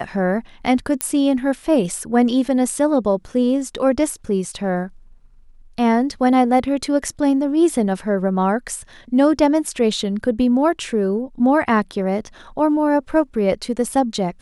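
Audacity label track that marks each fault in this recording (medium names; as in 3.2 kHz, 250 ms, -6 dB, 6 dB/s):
1.010000	1.010000	pop -3 dBFS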